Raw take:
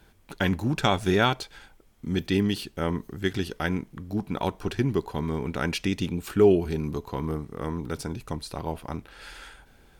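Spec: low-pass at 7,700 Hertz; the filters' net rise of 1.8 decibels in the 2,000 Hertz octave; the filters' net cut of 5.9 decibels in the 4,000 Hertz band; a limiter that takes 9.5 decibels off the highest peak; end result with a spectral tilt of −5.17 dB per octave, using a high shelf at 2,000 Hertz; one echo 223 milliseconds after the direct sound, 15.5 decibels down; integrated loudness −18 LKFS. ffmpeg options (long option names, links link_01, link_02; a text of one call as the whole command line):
ffmpeg -i in.wav -af "lowpass=7700,highshelf=frequency=2000:gain=-6.5,equalizer=frequency=2000:width_type=o:gain=7,equalizer=frequency=4000:width_type=o:gain=-4,alimiter=limit=-17.5dB:level=0:latency=1,aecho=1:1:223:0.168,volume=12.5dB" out.wav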